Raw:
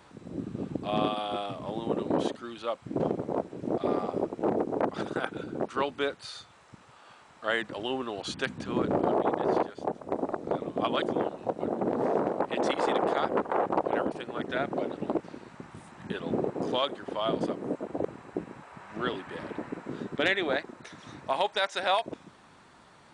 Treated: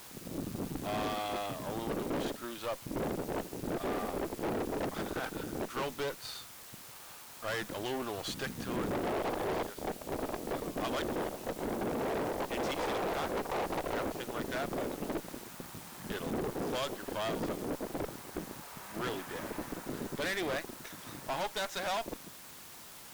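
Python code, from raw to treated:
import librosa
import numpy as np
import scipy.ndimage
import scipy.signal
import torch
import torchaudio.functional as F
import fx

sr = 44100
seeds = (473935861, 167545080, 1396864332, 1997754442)

p1 = fx.quant_dither(x, sr, seeds[0], bits=6, dither='triangular')
p2 = x + F.gain(torch.from_numpy(p1), -11.0).numpy()
y = fx.tube_stage(p2, sr, drive_db=31.0, bias=0.7)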